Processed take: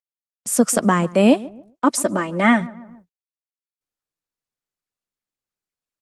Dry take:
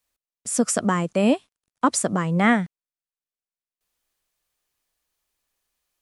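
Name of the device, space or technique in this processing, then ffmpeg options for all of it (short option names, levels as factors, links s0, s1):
video call: -filter_complex "[0:a]asplit=3[s0][s1][s2];[s0]afade=t=out:st=1.85:d=0.02[s3];[s1]aecho=1:1:3.3:0.86,afade=t=in:st=1.85:d=0.02,afade=t=out:st=2.6:d=0.02[s4];[s2]afade=t=in:st=2.6:d=0.02[s5];[s3][s4][s5]amix=inputs=3:normalize=0,highpass=f=140:w=0.5412,highpass=f=140:w=1.3066,asplit=2[s6][s7];[s7]adelay=140,lowpass=f=1300:p=1,volume=0.112,asplit=2[s8][s9];[s9]adelay=140,lowpass=f=1300:p=1,volume=0.4,asplit=2[s10][s11];[s11]adelay=140,lowpass=f=1300:p=1,volume=0.4[s12];[s6][s8][s10][s12]amix=inputs=4:normalize=0,dynaudnorm=f=100:g=5:m=3.16,agate=range=0.0447:threshold=0.00501:ratio=16:detection=peak,volume=0.891" -ar 48000 -c:a libopus -b:a 20k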